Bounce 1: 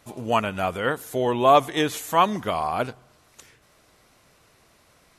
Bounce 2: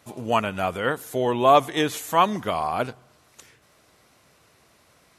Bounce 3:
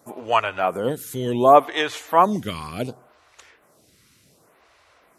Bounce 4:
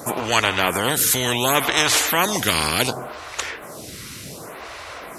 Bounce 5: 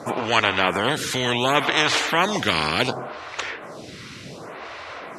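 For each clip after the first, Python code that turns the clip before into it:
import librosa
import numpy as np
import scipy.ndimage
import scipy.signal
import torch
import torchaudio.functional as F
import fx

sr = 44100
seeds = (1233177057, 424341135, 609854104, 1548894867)

y1 = scipy.signal.sosfilt(scipy.signal.butter(2, 63.0, 'highpass', fs=sr, output='sos'), x)
y2 = fx.stagger_phaser(y1, sr, hz=0.68)
y2 = F.gain(torch.from_numpy(y2), 4.5).numpy()
y3 = fx.spectral_comp(y2, sr, ratio=4.0)
y4 = fx.bandpass_edges(y3, sr, low_hz=100.0, high_hz=4200.0)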